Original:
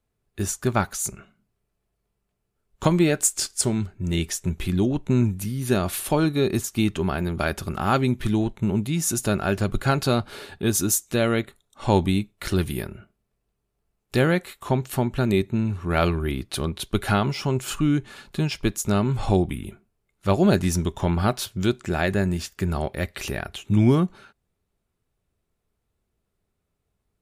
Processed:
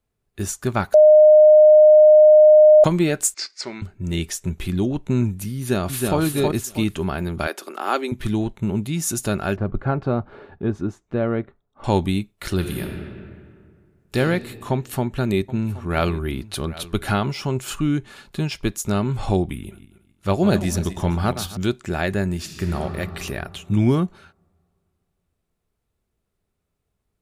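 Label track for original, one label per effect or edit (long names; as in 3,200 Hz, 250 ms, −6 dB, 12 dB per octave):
0.940000	2.840000	beep over 612 Hz −6.5 dBFS
3.340000	3.820000	loudspeaker in its box 440–5,000 Hz, peaks and dips at 460 Hz −7 dB, 730 Hz −5 dB, 2,100 Hz +9 dB, 3,200 Hz −9 dB, 4,700 Hz +5 dB
5.570000	6.190000	delay throw 320 ms, feedback 25%, level −2.5 dB
7.470000	8.120000	Butterworth high-pass 290 Hz
9.560000	11.840000	low-pass filter 1,200 Hz
12.580000	14.170000	thrown reverb, RT60 2.1 s, DRR 1.5 dB
14.710000	17.160000	single-tap delay 773 ms −17.5 dB
19.580000	21.570000	feedback delay that plays each chunk backwards 135 ms, feedback 45%, level −11 dB
22.360000	22.770000	thrown reverb, RT60 2.7 s, DRR 1.5 dB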